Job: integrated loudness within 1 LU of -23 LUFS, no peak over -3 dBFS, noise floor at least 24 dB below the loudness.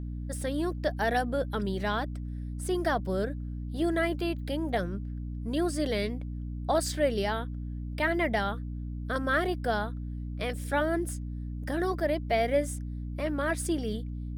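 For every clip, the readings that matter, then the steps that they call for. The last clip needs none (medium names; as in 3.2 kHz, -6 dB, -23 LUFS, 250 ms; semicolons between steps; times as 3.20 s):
hum 60 Hz; highest harmonic 300 Hz; hum level -33 dBFS; loudness -31.0 LUFS; peak level -14.5 dBFS; loudness target -23.0 LUFS
-> de-hum 60 Hz, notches 5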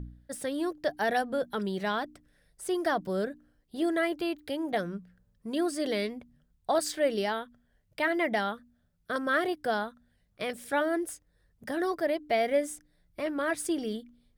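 hum not found; loudness -31.0 LUFS; peak level -15.0 dBFS; loudness target -23.0 LUFS
-> trim +8 dB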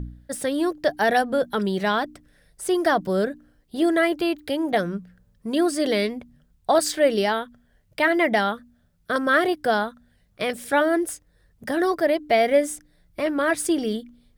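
loudness -23.0 LUFS; peak level -7.0 dBFS; noise floor -63 dBFS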